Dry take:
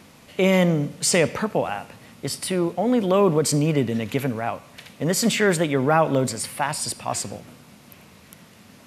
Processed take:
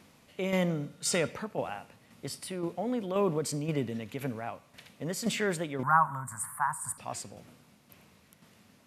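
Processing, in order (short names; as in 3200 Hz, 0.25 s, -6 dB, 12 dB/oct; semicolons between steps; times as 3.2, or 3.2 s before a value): 5.83–6.98 EQ curve 160 Hz 0 dB, 460 Hz -29 dB, 1000 Hz +14 dB, 1700 Hz +6 dB, 2500 Hz -21 dB, 5000 Hz -24 dB, 8100 Hz +5 dB; tremolo saw down 1.9 Hz, depth 50%; 0.7–1.31 small resonant body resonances 1400/3700 Hz, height 13 dB; gain -9 dB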